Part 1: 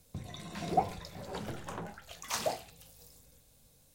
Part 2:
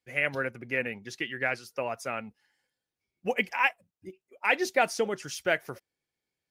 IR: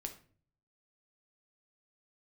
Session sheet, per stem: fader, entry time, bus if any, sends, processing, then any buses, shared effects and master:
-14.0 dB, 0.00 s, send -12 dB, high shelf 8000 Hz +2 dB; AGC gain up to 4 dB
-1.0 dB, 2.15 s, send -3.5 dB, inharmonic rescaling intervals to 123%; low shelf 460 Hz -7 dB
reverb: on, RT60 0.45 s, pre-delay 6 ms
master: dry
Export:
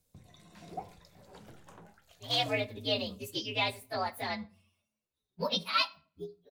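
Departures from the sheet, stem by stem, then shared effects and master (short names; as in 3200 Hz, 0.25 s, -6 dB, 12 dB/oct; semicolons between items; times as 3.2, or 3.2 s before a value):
stem 1: missing AGC gain up to 4 dB; stem 2: missing low shelf 460 Hz -7 dB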